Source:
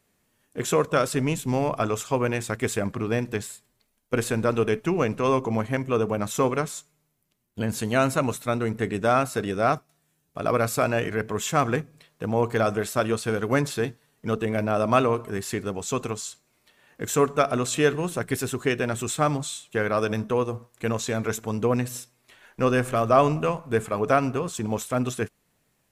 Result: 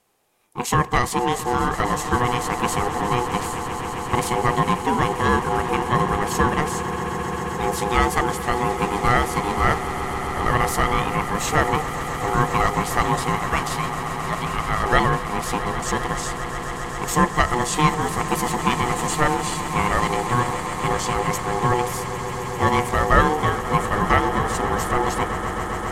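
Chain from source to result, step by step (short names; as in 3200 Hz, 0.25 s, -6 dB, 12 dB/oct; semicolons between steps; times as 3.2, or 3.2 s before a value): 13.36–14.84 HPF 560 Hz 12 dB/oct; ring modulator 610 Hz; swelling echo 0.133 s, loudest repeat 8, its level -15.5 dB; gain +5.5 dB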